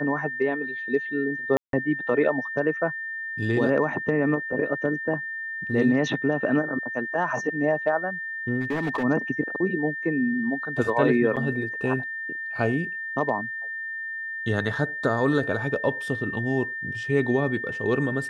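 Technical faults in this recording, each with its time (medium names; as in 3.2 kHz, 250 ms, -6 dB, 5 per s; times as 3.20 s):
whine 1.8 kHz -30 dBFS
1.57–1.73 s: dropout 162 ms
8.60–9.04 s: clipped -22 dBFS
11.36–11.37 s: dropout 7.3 ms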